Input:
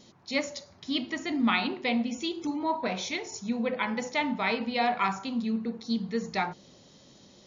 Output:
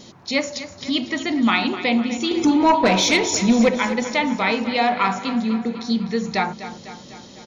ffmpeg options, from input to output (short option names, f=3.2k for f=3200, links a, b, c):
-filter_complex "[0:a]asplit=2[a][b];[b]acompressor=threshold=-39dB:ratio=6,volume=1dB[c];[a][c]amix=inputs=2:normalize=0,asettb=1/sr,asplit=3[d][e][f];[d]atrim=end=2.314[g];[e]atrim=start=2.31:end=3.69,asetpts=PTS-STARTPTS,afade=t=in:d=0.004:c=qsin,afade=t=out:st=1.376:d=0.004:c=qsin,aeval=exprs='0.188*sin(PI/2*1.58*val(0)/0.188)':c=same[h];[f]atrim=start=3.686[i];[g][h]acrossfade=d=0.004:c1=hsin:c2=qsin[j];[j][i]acrossfade=d=0.004:c1=qsin:c2=hsin,aecho=1:1:250|500|750|1000|1250|1500:0.224|0.132|0.0779|0.046|0.0271|0.016,volume=5.5dB"